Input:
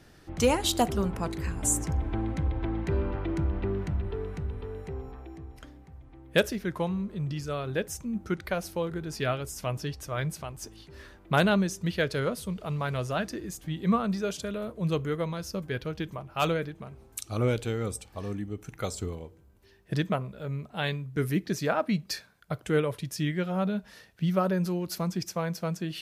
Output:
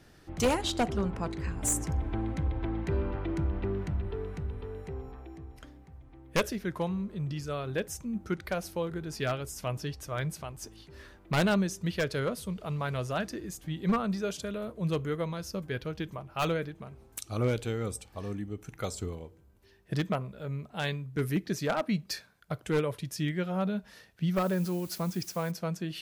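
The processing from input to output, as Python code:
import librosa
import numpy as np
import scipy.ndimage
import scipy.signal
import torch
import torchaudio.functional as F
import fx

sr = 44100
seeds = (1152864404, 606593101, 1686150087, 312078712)

y = np.minimum(x, 2.0 * 10.0 ** (-19.5 / 20.0) - x)
y = fx.air_absorb(y, sr, metres=65.0, at=(0.61, 1.62))
y = fx.dmg_noise_colour(y, sr, seeds[0], colour='blue', level_db=-49.0, at=(24.35, 25.5), fade=0.02)
y = y * 10.0 ** (-2.0 / 20.0)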